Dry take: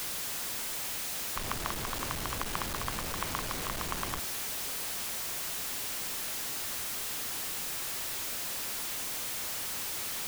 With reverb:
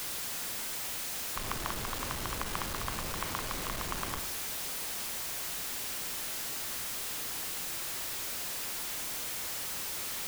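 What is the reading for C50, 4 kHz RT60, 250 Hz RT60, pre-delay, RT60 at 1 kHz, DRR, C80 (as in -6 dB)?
11.0 dB, 0.45 s, 0.65 s, 33 ms, 0.60 s, 8.5 dB, 14.0 dB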